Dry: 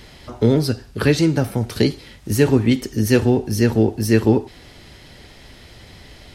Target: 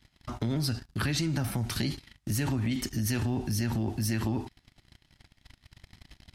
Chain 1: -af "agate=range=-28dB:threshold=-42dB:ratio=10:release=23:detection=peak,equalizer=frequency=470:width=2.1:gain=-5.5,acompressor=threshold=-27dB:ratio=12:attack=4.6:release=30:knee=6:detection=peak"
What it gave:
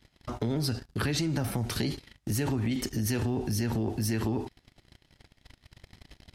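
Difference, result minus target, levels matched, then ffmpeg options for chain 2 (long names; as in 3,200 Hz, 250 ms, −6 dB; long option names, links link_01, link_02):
500 Hz band +4.5 dB
-af "agate=range=-28dB:threshold=-42dB:ratio=10:release=23:detection=peak,equalizer=frequency=470:width=2.1:gain=-16,acompressor=threshold=-27dB:ratio=12:attack=4.6:release=30:knee=6:detection=peak"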